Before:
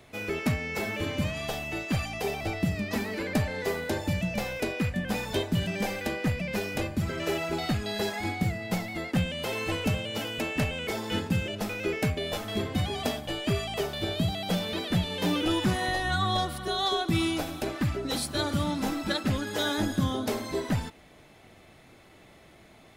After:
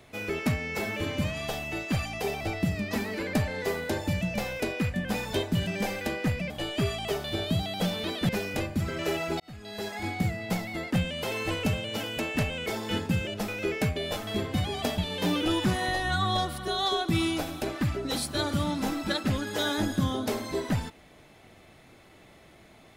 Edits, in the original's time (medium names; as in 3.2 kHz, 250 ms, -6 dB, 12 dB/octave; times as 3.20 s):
7.61–8.40 s: fade in
13.19–14.98 s: move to 6.50 s